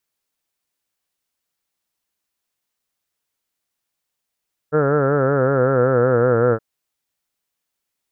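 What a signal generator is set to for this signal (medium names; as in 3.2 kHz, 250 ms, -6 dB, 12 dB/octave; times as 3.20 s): formant-synthesis vowel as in heard, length 1.87 s, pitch 147 Hz, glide -4 st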